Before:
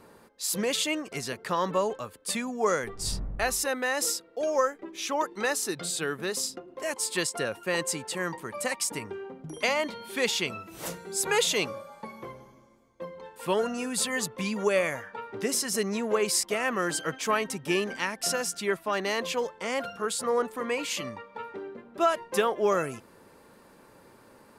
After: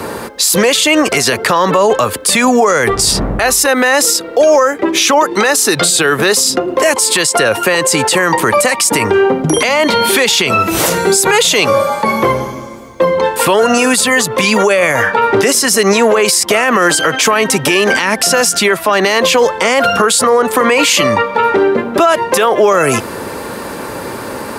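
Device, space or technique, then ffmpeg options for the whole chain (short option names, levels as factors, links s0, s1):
mastering chain: -filter_complex "[0:a]highpass=49,equalizer=f=170:t=o:w=0.77:g=-3.5,acrossover=split=170|400[s0][s1][s2];[s0]acompressor=threshold=0.00251:ratio=4[s3];[s1]acompressor=threshold=0.00447:ratio=4[s4];[s2]acompressor=threshold=0.0316:ratio=4[s5];[s3][s4][s5]amix=inputs=3:normalize=0,acompressor=threshold=0.0158:ratio=2,alimiter=level_in=44.7:limit=0.891:release=50:level=0:latency=1,volume=0.891"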